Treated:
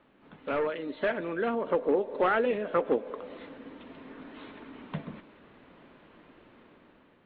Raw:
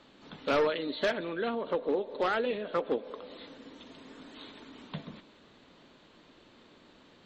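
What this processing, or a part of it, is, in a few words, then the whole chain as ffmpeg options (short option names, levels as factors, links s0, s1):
action camera in a waterproof case: -af "lowpass=f=2600:w=0.5412,lowpass=f=2600:w=1.3066,dynaudnorm=f=440:g=5:m=2.51,volume=0.631" -ar 16000 -c:a aac -b:a 48k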